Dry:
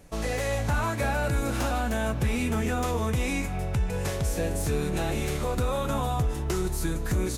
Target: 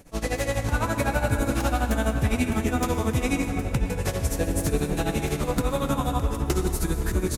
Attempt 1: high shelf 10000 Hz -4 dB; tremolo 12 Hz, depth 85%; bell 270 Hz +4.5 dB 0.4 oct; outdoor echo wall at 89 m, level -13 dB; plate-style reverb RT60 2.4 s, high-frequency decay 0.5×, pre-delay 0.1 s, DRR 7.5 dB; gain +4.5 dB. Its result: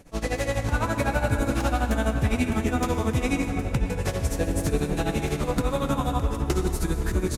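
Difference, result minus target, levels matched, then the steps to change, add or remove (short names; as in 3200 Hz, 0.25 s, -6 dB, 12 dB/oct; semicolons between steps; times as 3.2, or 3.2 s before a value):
8000 Hz band -2.5 dB
change: high shelf 10000 Hz +4 dB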